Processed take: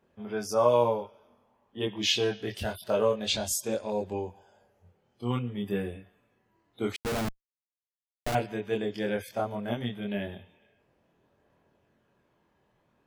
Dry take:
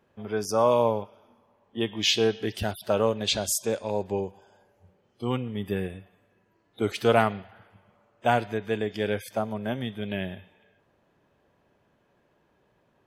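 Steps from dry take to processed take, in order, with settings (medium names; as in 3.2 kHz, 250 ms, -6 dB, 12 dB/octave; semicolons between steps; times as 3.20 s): chorus voices 2, 0.26 Hz, delay 24 ms, depth 1.1 ms; 6.96–8.35 s: Schmitt trigger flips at -25 dBFS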